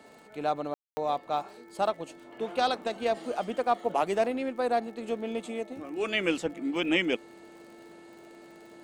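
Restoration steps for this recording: de-click; de-hum 438.8 Hz, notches 5; band-stop 340 Hz, Q 30; room tone fill 0.74–0.97 s

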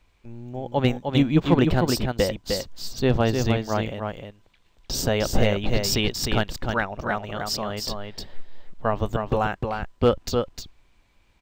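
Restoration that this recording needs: clip repair -8 dBFS; inverse comb 306 ms -5 dB

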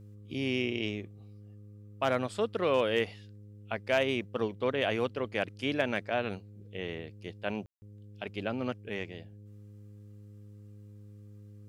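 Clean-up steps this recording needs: clip repair -15.5 dBFS; de-hum 103.4 Hz, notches 5; room tone fill 7.66–7.82 s

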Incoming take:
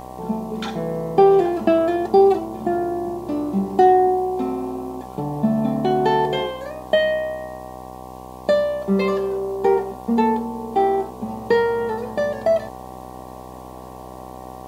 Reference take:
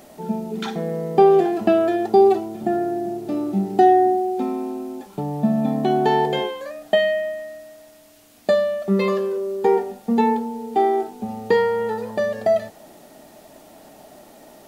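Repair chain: de-hum 63.3 Hz, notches 18; band-stop 760 Hz, Q 30

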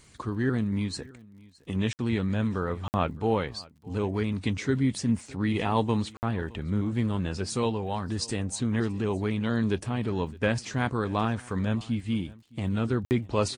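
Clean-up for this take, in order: de-click; interpolate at 1.93/2.88/6.17/13.05 s, 59 ms; inverse comb 614 ms -23 dB

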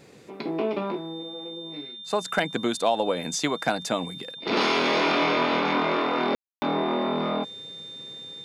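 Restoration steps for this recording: clip repair -11 dBFS; de-click; band-stop 3.6 kHz, Q 30; room tone fill 6.35–6.62 s

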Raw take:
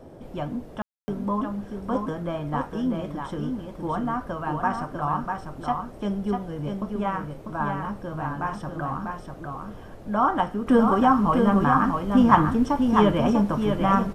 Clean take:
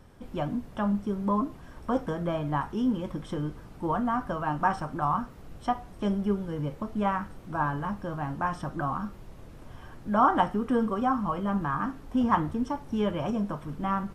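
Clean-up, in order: room tone fill 0.82–1.08 s; noise print and reduce 6 dB; inverse comb 646 ms -5 dB; gain correction -7.5 dB, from 10.67 s

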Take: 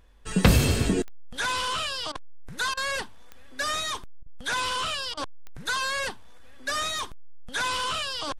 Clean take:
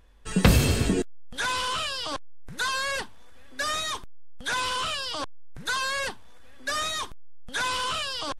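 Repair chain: de-click; interpolate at 2.12/2.74/4.23/5.14 s, 31 ms

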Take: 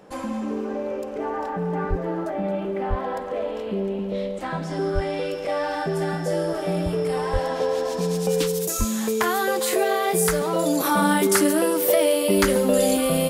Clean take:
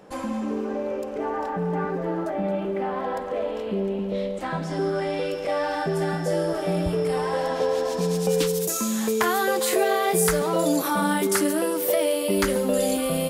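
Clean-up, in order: de-plosive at 1.89/2.89/4.94/7.32/8.78 s; trim 0 dB, from 10.80 s -3.5 dB

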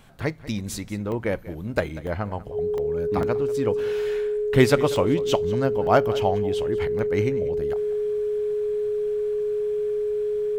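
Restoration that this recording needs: band-stop 420 Hz, Q 30; interpolate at 1.12/2.07/2.78/3.23/4.96/5.87/6.99 s, 1 ms; inverse comb 191 ms -18 dB

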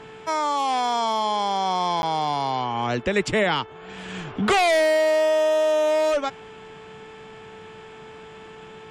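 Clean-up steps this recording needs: de-hum 438.9 Hz, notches 8; interpolate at 2.02 s, 11 ms

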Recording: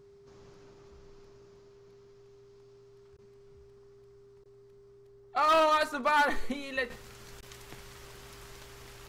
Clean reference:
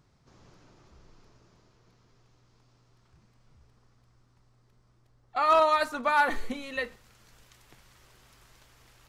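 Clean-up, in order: clip repair -20 dBFS; band-stop 400 Hz, Q 30; interpolate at 3.17/4.44/7.41 s, 14 ms; gain correction -8.5 dB, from 6.90 s

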